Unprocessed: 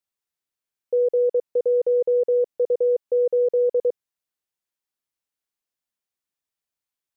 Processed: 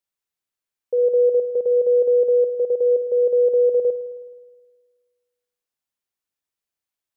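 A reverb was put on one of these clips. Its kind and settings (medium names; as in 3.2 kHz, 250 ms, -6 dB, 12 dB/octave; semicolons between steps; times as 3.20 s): spring tank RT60 1.5 s, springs 53 ms, chirp 55 ms, DRR 8 dB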